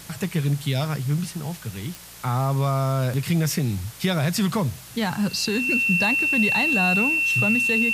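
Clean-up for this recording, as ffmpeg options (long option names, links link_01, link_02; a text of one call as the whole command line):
ffmpeg -i in.wav -af "adeclick=threshold=4,bandreject=frequency=58:width_type=h:width=4,bandreject=frequency=116:width_type=h:width=4,bandreject=frequency=174:width_type=h:width=4,bandreject=frequency=2700:width=30,afwtdn=0.0079" out.wav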